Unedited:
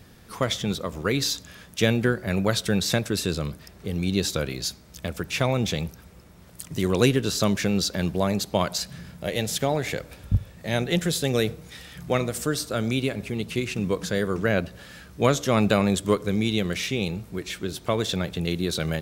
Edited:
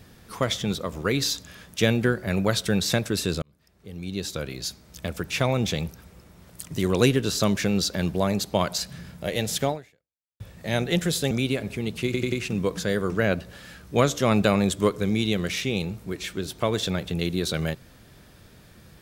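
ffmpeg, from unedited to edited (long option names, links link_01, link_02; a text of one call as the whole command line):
ffmpeg -i in.wav -filter_complex "[0:a]asplit=7[link_01][link_02][link_03][link_04][link_05][link_06][link_07];[link_01]atrim=end=3.42,asetpts=PTS-STARTPTS,afade=type=out:start_time=3.416:duration=0.004:curve=hsin[link_08];[link_02]atrim=start=3.42:end=10.4,asetpts=PTS-STARTPTS,afade=type=in:duration=1.64,afade=type=out:start_time=6.27:duration=0.71:curve=exp[link_09];[link_03]atrim=start=10.4:end=11.312,asetpts=PTS-STARTPTS,afade=type=in:duration=0.004:curve=hsin[link_10];[link_04]atrim=start=12.838:end=13.672[link_11];[link_05]atrim=start=13.578:end=13.672[link_12];[link_06]atrim=start=13.578:end=13.672[link_13];[link_07]atrim=start=13.578[link_14];[link_08][link_09][link_10]concat=n=3:v=0:a=1[link_15];[link_15][link_11]acrossfade=duration=0.004:curve1=hsin:curve2=hsin[link_16];[link_16][link_12]acrossfade=duration=0.004:curve1=hsin:curve2=hsin[link_17];[link_17][link_13]acrossfade=duration=0.004:curve1=hsin:curve2=hsin[link_18];[link_18][link_14]acrossfade=duration=0.004:curve1=hsin:curve2=hsin" out.wav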